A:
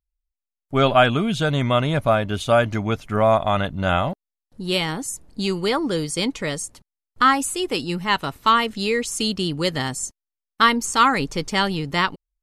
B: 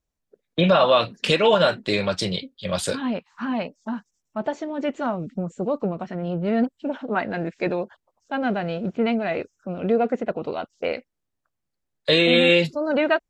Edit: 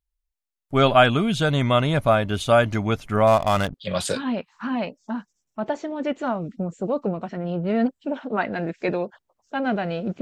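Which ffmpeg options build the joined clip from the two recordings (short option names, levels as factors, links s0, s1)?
-filter_complex "[0:a]asettb=1/sr,asplit=3[s0][s1][s2];[s0]atrim=end=3.274[s3];[s1]atrim=start=3.27:end=3.74,asetpts=PTS-STARTPTS,afade=t=in:d=0.004:c=qsin,afade=t=out:st=0.466:d=0.004:c=qsin,adynamicsmooth=sensitivity=6.5:basefreq=550[s4];[s2]atrim=start=3.736[s5];[s3][s4]acrossfade=d=0.004:c1=hsin:c2=qsin[s6];[s6][s5]acrossfade=d=0.004:c1=qsin:c2=hsin,apad=whole_dur=10.21,atrim=end=10.21,atrim=end=3.742[s7];[1:a]atrim=start=2.518:end=8.99[s8];[s7][s8]acrossfade=d=0.004:c1=hsin:c2=hsin"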